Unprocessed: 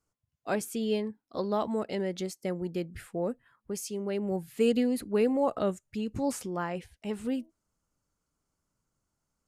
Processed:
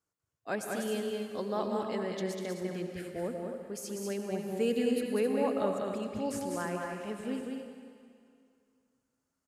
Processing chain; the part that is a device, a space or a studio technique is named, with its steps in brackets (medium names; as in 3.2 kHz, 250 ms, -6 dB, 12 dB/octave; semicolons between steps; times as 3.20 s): stadium PA (high-pass 130 Hz 6 dB/octave; peaking EQ 1.7 kHz +5.5 dB 0.26 oct; loudspeakers at several distances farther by 67 m -4 dB, 90 m -8 dB; reverberation RT60 2.3 s, pre-delay 79 ms, DRR 6.5 dB); trim -4.5 dB